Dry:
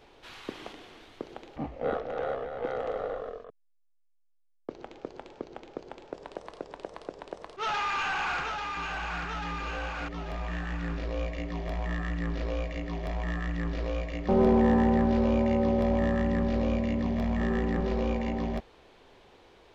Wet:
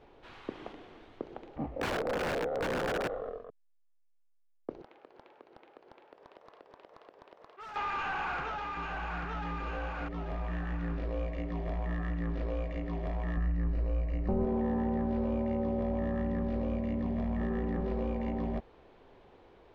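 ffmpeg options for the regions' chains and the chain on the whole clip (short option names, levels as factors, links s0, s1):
-filter_complex "[0:a]asettb=1/sr,asplit=3[s0][s1][s2];[s0]atrim=end=1.764[s3];[s1]atrim=start=1.76:end=3.08,asetpts=PTS-STARTPTS,afade=t=in:d=0.004:c=qsin,afade=t=out:st=1.316:d=0.004:c=qsin,equalizer=f=350:t=o:w=2.7:g=9.5,aeval=exprs='(mod(11.2*val(0)+1,2)-1)/11.2':c=same[s4];[s2]atrim=start=3.076[s5];[s3][s4]acrossfade=d=0.004:c1=hsin:c2=qsin[s6];[s6][s5]acrossfade=d=0.004:c1=qsin:c2=hsin,asettb=1/sr,asplit=3[s7][s8][s9];[s7]atrim=end=4.824[s10];[s8]atrim=start=4.82:end=7.76,asetpts=PTS-STARTPTS,afade=t=in:d=0.004:c=qsin,afade=t=out:st=2.936:d=0.004:c=qsin,acompressor=threshold=0.0112:ratio=2.5:attack=3.2:release=140:knee=1:detection=peak,bandpass=f=1900:t=q:w=0.69,aeval=exprs='0.0141*(abs(mod(val(0)/0.0141+3,4)-2)-1)':c=same[s11];[s9]atrim=start=7.756[s12];[s10][s11]acrossfade=d=0.004:c1=hsin:c2=qsin[s13];[s13][s12]acrossfade=d=0.004:c1=qsin:c2=hsin,asettb=1/sr,asplit=3[s14][s15][s16];[s14]atrim=end=13.374[s17];[s15]atrim=start=13.37:end=14.45,asetpts=PTS-STARTPTS,afade=t=in:d=0.004:c=qsin,afade=t=out:st=1.076:d=0.004:c=qsin,asuperstop=centerf=3400:order=4:qfactor=6,lowshelf=f=140:g=12[s18];[s16]atrim=start=14.446[s19];[s17][s18]acrossfade=d=0.004:c1=hsin:c2=qsin[s20];[s20][s19]acrossfade=d=0.004:c1=qsin:c2=hsin,lowpass=f=1200:p=1,acompressor=threshold=0.0316:ratio=3"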